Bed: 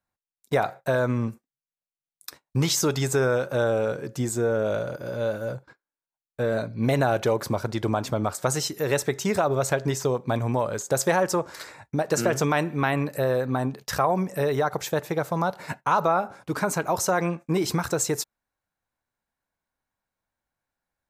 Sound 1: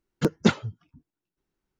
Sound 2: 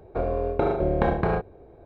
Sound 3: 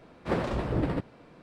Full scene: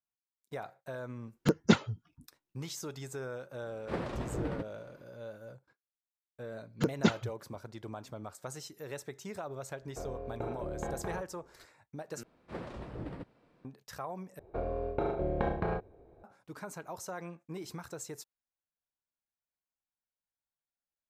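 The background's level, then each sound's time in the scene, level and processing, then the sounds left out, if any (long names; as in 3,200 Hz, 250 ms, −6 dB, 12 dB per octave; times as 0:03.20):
bed −18 dB
0:01.24: mix in 1 −3.5 dB
0:03.62: mix in 3 −7.5 dB
0:06.59: mix in 1 −6.5 dB
0:09.81: mix in 2 −15.5 dB
0:12.23: overwrite with 3 −13.5 dB
0:14.39: overwrite with 2 −9 dB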